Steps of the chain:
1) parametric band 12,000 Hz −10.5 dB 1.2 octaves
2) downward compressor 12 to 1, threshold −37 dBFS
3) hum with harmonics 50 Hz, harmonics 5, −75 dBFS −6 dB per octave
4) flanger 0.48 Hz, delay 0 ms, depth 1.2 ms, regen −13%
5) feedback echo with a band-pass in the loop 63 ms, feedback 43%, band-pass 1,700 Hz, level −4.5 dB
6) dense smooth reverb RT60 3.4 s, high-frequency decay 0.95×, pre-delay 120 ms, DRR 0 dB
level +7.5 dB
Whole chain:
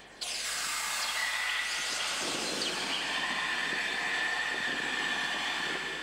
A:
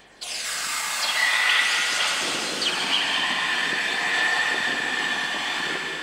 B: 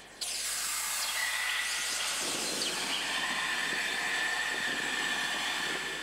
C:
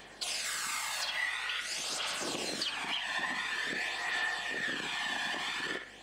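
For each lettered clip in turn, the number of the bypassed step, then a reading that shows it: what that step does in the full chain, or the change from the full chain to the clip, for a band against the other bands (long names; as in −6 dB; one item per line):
2, average gain reduction 7.0 dB
1, 8 kHz band +4.5 dB
6, echo-to-direct ratio 2.5 dB to −5.0 dB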